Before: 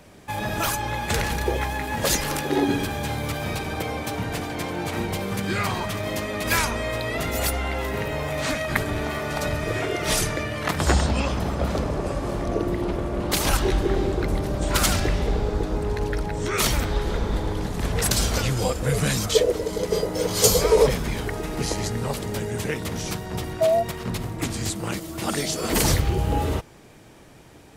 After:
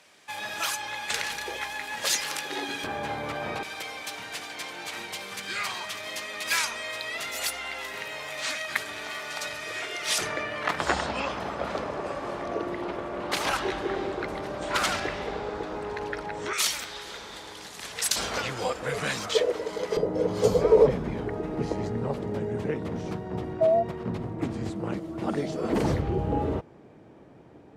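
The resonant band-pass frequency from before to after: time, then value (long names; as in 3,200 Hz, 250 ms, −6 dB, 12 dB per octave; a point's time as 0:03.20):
resonant band-pass, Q 0.53
3,700 Hz
from 0:02.84 1,000 Hz
from 0:03.63 4,200 Hz
from 0:10.18 1,400 Hz
from 0:16.53 5,100 Hz
from 0:18.16 1,400 Hz
from 0:19.97 340 Hz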